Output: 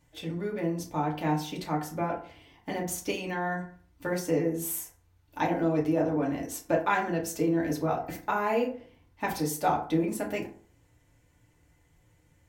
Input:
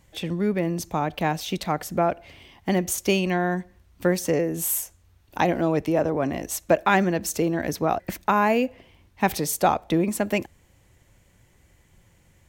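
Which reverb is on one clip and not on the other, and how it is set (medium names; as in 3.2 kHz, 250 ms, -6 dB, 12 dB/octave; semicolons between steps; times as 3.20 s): FDN reverb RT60 0.47 s, low-frequency decay 1×, high-frequency decay 0.5×, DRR -3 dB; trim -11 dB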